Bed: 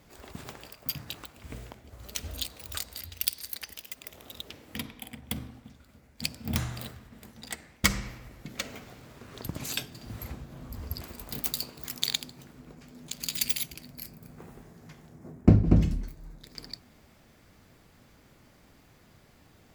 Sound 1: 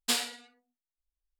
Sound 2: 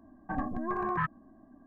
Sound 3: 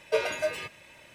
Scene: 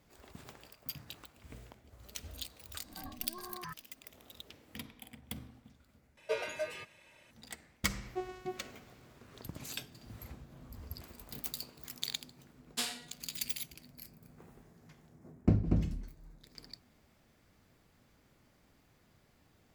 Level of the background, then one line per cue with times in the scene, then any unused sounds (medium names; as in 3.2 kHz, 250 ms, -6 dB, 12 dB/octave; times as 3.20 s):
bed -9 dB
2.67 s: add 2 -15.5 dB + swell ahead of each attack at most 110 dB/s
6.17 s: replace with 3 -8.5 dB
8.03 s: add 3 -12 dB + vocoder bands 4, saw 369 Hz
12.69 s: add 1 -7.5 dB